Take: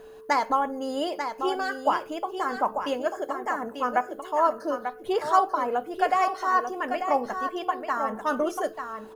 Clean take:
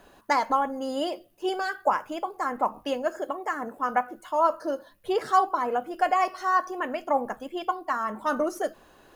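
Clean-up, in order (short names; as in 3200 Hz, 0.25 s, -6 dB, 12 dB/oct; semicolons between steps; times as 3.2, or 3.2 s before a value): notch 440 Hz, Q 30; inverse comb 0.891 s -7.5 dB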